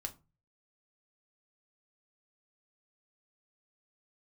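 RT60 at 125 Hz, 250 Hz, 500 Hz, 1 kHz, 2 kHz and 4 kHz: 0.60, 0.40, 0.30, 0.30, 0.20, 0.20 s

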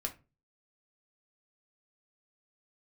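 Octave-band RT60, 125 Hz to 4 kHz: 0.50, 0.40, 0.35, 0.25, 0.25, 0.20 s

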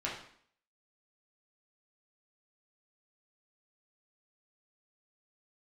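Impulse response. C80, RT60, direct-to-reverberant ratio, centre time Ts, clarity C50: 8.5 dB, 0.60 s, -5.5 dB, 38 ms, 4.5 dB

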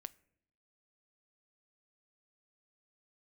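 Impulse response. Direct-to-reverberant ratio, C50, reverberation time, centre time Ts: 15.0 dB, 22.5 dB, 0.70 s, 2 ms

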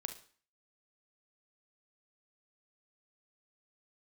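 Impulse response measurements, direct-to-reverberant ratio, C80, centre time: 7.0 dB, 16.0 dB, 11 ms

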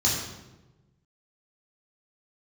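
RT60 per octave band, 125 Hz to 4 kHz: 1.7, 1.4, 1.3, 0.95, 0.85, 0.75 s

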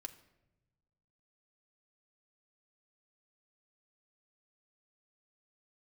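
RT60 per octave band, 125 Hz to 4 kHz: 1.9, 1.5, 1.1, 0.80, 0.75, 0.60 s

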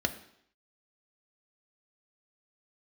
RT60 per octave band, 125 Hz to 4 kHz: 0.60, 0.65, 0.70, 0.70, 0.70, 0.70 s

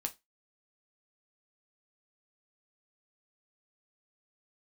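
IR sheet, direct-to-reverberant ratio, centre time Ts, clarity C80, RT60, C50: 5.0 dB, 5 ms, 29.5 dB, 0.20 s, 20.0 dB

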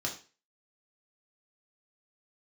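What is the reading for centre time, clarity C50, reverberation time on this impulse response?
18 ms, 9.5 dB, 0.35 s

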